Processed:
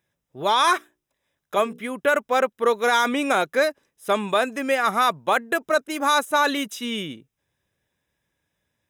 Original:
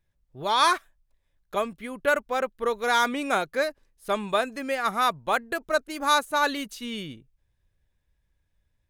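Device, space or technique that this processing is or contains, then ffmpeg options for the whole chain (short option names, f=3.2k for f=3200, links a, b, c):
PA system with an anti-feedback notch: -filter_complex "[0:a]asettb=1/sr,asplit=3[a][b][c];[a]atrim=end=0.754[d];[b]atrim=start=0.75:end=1.8,asetpts=PTS-STARTPTS,afade=t=in:d=0.004:c=qsin,afade=t=out:st=1.046:d=0.004:c=qsin,bandreject=f=60:t=h:w=6,bandreject=f=120:t=h:w=6,bandreject=f=180:t=h:w=6,bandreject=f=240:t=h:w=6,bandreject=f=300:t=h:w=6,bandreject=f=360:t=h:w=6,bandreject=f=420:t=h:w=6,bandreject=f=480:t=h:w=6[e];[c]atrim=start=1.796[f];[d][e]acrossfade=d=0.004:c1=hsin:c2=qsin[g];[g][f]acrossfade=d=0.004:c1=qsin:c2=hsin,highpass=180,asuperstop=centerf=4400:order=8:qfactor=6.8,alimiter=limit=-16dB:level=0:latency=1:release=22,volume=6.5dB"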